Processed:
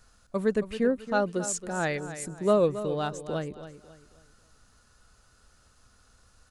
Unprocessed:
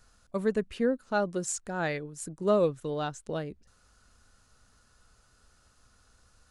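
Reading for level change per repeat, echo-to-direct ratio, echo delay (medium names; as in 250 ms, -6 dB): -9.0 dB, -12.0 dB, 273 ms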